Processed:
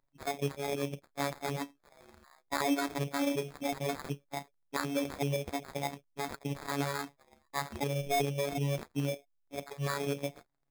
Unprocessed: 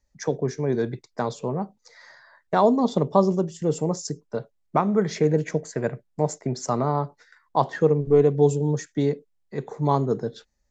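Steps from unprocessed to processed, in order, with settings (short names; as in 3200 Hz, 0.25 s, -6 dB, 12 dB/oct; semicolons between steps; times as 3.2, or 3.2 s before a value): repeated pitch sweeps +9 st, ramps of 0.373 s; limiter -15 dBFS, peak gain reduction 9.5 dB; robotiser 141 Hz; sample-rate reducer 2900 Hz, jitter 0%; gain -4.5 dB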